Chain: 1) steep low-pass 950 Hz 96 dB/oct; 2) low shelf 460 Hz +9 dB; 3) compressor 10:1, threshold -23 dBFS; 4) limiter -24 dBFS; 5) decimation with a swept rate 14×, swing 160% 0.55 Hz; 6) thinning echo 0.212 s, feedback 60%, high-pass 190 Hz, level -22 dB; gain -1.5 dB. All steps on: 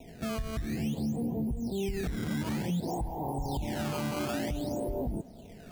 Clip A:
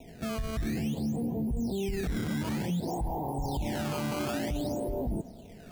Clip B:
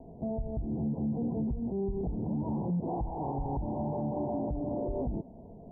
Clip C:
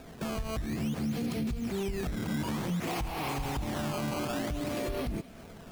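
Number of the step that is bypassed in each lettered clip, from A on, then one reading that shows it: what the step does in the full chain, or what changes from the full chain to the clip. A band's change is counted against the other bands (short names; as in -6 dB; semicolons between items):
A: 3, mean gain reduction 6.0 dB; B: 5, distortion -8 dB; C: 1, 2 kHz band +2.5 dB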